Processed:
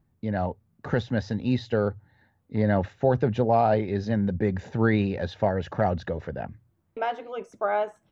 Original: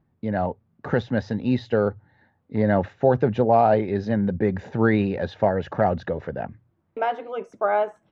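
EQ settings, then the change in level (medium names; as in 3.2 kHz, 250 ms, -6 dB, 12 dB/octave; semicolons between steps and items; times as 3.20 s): bass shelf 95 Hz +10.5 dB; treble shelf 4 kHz +11.5 dB; -4.5 dB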